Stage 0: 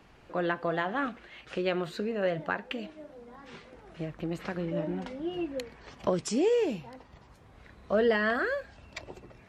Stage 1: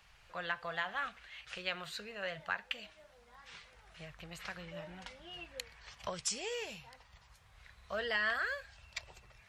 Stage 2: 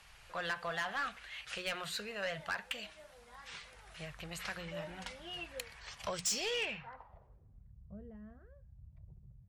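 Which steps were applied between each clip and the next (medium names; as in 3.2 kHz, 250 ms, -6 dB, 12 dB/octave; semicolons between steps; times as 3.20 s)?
amplifier tone stack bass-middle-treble 10-0-10; trim +2.5 dB
low-pass sweep 11 kHz -> 150 Hz, 6.14–7.70 s; hum notches 60/120/180 Hz; saturation -33.5 dBFS, distortion -8 dB; trim +4 dB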